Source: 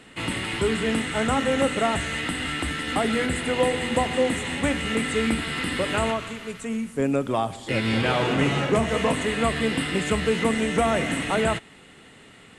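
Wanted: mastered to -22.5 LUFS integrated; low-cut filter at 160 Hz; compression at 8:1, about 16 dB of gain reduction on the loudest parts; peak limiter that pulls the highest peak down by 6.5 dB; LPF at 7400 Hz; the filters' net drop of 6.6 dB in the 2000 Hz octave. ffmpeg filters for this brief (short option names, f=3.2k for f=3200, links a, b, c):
-af "highpass=160,lowpass=7.4k,equalizer=f=2k:t=o:g=-8,acompressor=threshold=-35dB:ratio=8,volume=17dB,alimiter=limit=-13dB:level=0:latency=1"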